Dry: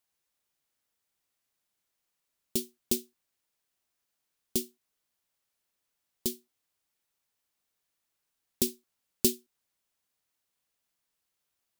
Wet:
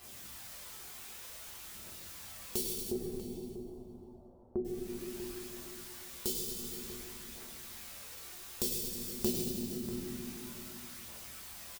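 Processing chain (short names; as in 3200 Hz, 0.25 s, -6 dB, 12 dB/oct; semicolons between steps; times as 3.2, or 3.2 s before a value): comb 6.5 ms, depth 50%; requantised 10-bit, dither triangular; phaser 0.54 Hz, delay 2.9 ms, feedback 55%; 2.63–4.65 steep low-pass 810 Hz 36 dB/oct; reverb RT60 1.4 s, pre-delay 6 ms, DRR -10 dB; compressor 3:1, threshold -37 dBFS, peak gain reduction 20 dB; outdoor echo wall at 110 m, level -10 dB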